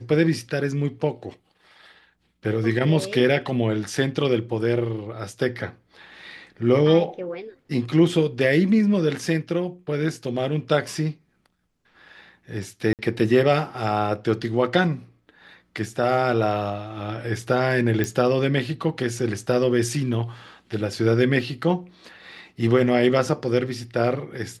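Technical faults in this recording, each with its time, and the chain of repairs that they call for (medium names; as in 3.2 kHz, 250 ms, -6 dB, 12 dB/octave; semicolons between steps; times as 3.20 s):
12.93–12.99 s: dropout 58 ms
18.04 s: pop -11 dBFS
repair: de-click; interpolate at 12.93 s, 58 ms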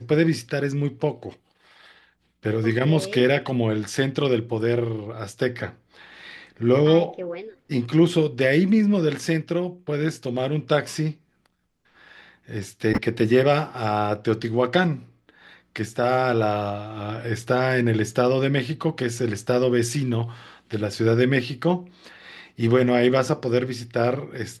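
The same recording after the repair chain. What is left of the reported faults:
nothing left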